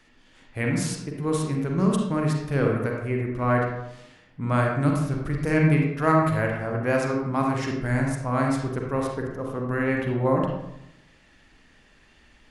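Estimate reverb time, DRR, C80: 0.85 s, -0.5 dB, 4.5 dB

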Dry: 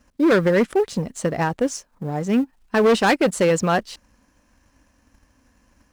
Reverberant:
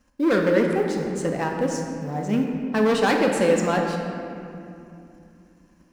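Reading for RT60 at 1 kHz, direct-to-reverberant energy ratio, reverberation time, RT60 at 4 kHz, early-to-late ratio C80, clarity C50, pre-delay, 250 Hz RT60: 2.5 s, 1.0 dB, 2.7 s, 1.6 s, 4.0 dB, 2.5 dB, 4 ms, 4.0 s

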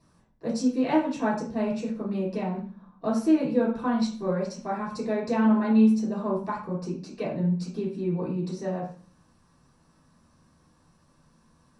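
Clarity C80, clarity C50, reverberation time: 10.0 dB, 5.5 dB, 0.45 s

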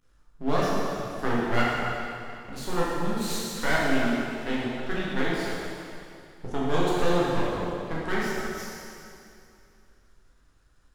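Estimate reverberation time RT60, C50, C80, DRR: 2.5 s, -3.0 dB, -1.5 dB, -7.5 dB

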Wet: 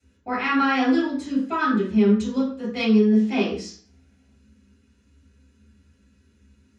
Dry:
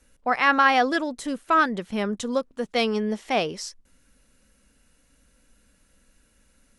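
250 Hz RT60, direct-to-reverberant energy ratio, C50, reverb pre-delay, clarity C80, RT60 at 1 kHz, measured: 0.50 s, -10.0 dB, 5.0 dB, 3 ms, 10.0 dB, 0.45 s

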